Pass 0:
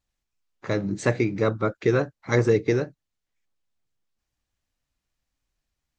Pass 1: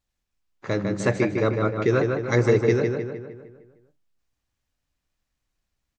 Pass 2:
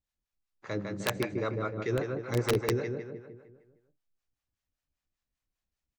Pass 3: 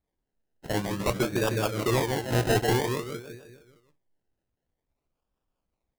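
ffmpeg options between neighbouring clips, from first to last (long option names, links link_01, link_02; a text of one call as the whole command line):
ffmpeg -i in.wav -filter_complex "[0:a]asplit=2[link_01][link_02];[link_02]adelay=153,lowpass=frequency=3600:poles=1,volume=-4dB,asplit=2[link_03][link_04];[link_04]adelay=153,lowpass=frequency=3600:poles=1,volume=0.53,asplit=2[link_05][link_06];[link_06]adelay=153,lowpass=frequency=3600:poles=1,volume=0.53,asplit=2[link_07][link_08];[link_08]adelay=153,lowpass=frequency=3600:poles=1,volume=0.53,asplit=2[link_09][link_10];[link_10]adelay=153,lowpass=frequency=3600:poles=1,volume=0.53,asplit=2[link_11][link_12];[link_12]adelay=153,lowpass=frequency=3600:poles=1,volume=0.53,asplit=2[link_13][link_14];[link_14]adelay=153,lowpass=frequency=3600:poles=1,volume=0.53[link_15];[link_01][link_03][link_05][link_07][link_09][link_11][link_13][link_15]amix=inputs=8:normalize=0" out.wav
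ffmpeg -i in.wav -filter_complex "[0:a]aeval=exprs='(mod(2.99*val(0)+1,2)-1)/2.99':channel_layout=same,acrossover=split=570[link_01][link_02];[link_01]aeval=exprs='val(0)*(1-0.7/2+0.7/2*cos(2*PI*5.1*n/s))':channel_layout=same[link_03];[link_02]aeval=exprs='val(0)*(1-0.7/2-0.7/2*cos(2*PI*5.1*n/s))':channel_layout=same[link_04];[link_03][link_04]amix=inputs=2:normalize=0,volume=-6dB" out.wav
ffmpeg -i in.wav -filter_complex "[0:a]asplit=2[link_01][link_02];[link_02]aeval=exprs='(mod(12.6*val(0)+1,2)-1)/12.6':channel_layout=same,volume=-9dB[link_03];[link_01][link_03]amix=inputs=2:normalize=0,acrusher=samples=30:mix=1:aa=0.000001:lfo=1:lforange=18:lforate=0.51,volume=3dB" out.wav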